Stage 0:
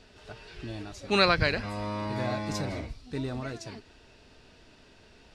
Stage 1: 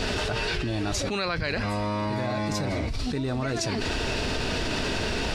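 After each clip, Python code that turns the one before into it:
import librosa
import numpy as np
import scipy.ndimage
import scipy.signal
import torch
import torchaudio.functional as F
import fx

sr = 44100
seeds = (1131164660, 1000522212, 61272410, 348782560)

y = fx.env_flatten(x, sr, amount_pct=100)
y = y * 10.0 ** (-8.5 / 20.0)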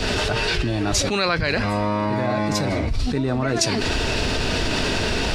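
y = fx.band_widen(x, sr, depth_pct=70)
y = y * 10.0 ** (6.5 / 20.0)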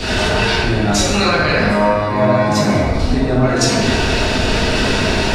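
y = fx.rev_plate(x, sr, seeds[0], rt60_s=1.9, hf_ratio=0.45, predelay_ms=0, drr_db=-6.0)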